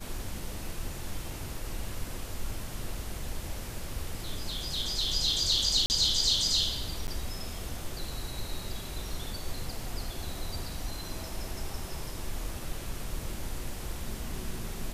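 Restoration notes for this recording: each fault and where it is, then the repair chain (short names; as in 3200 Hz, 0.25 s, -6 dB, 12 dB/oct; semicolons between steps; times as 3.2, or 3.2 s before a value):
5.86–5.9 gap 39 ms
7.07–7.08 gap 9.9 ms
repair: interpolate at 5.86, 39 ms; interpolate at 7.07, 9.9 ms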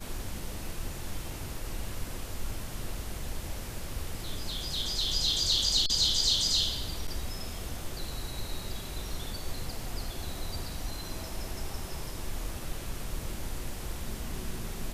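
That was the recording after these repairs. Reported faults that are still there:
none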